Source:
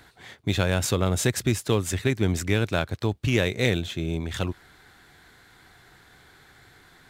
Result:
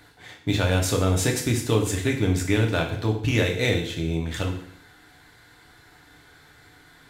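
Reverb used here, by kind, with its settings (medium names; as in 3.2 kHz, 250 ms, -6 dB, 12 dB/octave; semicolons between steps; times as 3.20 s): FDN reverb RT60 0.66 s, low-frequency decay 0.95×, high-frequency decay 1×, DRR 0.5 dB; trim -1.5 dB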